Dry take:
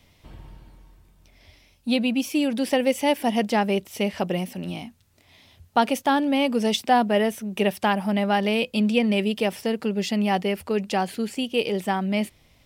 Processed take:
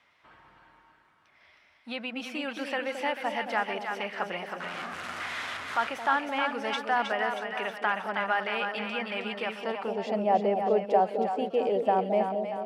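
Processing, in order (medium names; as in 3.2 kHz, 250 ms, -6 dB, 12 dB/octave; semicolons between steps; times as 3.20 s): 4.60–5.87 s: one-bit delta coder 64 kbps, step -25 dBFS; peak limiter -15 dBFS, peak gain reduction 8 dB; on a send: two-band feedback delay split 720 Hz, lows 220 ms, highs 316 ms, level -5 dB; on the sum: band-pass sweep 1.4 kHz -> 640 Hz, 9.49–10.25 s; trim +6 dB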